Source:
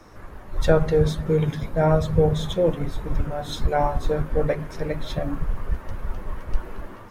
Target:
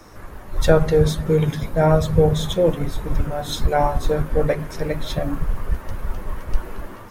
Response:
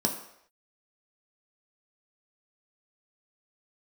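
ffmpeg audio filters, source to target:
-af "highshelf=frequency=6300:gain=8.5,volume=3dB"

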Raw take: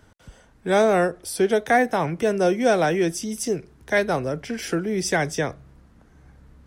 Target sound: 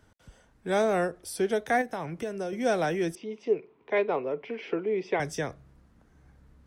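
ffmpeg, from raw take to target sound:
ffmpeg -i in.wav -filter_complex "[0:a]asettb=1/sr,asplit=3[link_01][link_02][link_03];[link_01]atrim=end=1.814[link_04];[link_02]atrim=start=1.81:end=2.53,asetpts=PTS-STARTPTS,afade=type=in:duration=0.004:curve=qsin,afade=type=out:start_time=0.716:duration=0.004:curve=qsin,acompressor=threshold=-23dB:ratio=6[link_05];[link_03]atrim=start=2.526[link_06];[link_04][link_05]acrossfade=duration=0.004:curve1=hsin:curve2=qsin[link_07];[link_07][link_06]acrossfade=duration=0.004:curve1=qsin:curve2=hsin,asettb=1/sr,asplit=3[link_08][link_09][link_10];[link_08]atrim=end=3.154[link_11];[link_09]atrim=start=3.15:end=5.2,asetpts=PTS-STARTPTS,afade=type=in:duration=0.004:curve=qsin,afade=type=out:start_time=2.046:duration=0.004:curve=qsin,highpass=270,equalizer=frequency=430:width_type=q:width=4:gain=9,equalizer=frequency=990:width_type=q:width=4:gain=7,equalizer=frequency=1600:width_type=q:width=4:gain=-9,equalizer=frequency=2400:width_type=q:width=4:gain=6,lowpass=frequency=3200:width=0.5412,lowpass=frequency=3200:width=1.3066[link_12];[link_10]atrim=start=5.196[link_13];[link_11][link_12]acrossfade=duration=0.004:curve1=hsin:curve2=qsin[link_14];[link_14][link_13]acrossfade=duration=0.004:curve1=qsin:curve2=hsin,volume=-7dB" out.wav

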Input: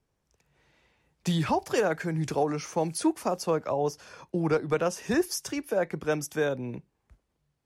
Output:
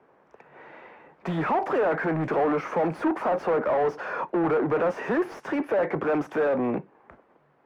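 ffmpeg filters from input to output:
ffmpeg -i in.wav -filter_complex "[0:a]asplit=2[link_01][link_02];[link_02]highpass=frequency=720:poles=1,volume=35dB,asoftclip=type=tanh:threshold=-14.5dB[link_03];[link_01][link_03]amix=inputs=2:normalize=0,lowpass=frequency=1300:poles=1,volume=-6dB,acrossover=split=180 2100:gain=0.224 1 0.0794[link_04][link_05][link_06];[link_04][link_05][link_06]amix=inputs=3:normalize=0,volume=-1dB" out.wav

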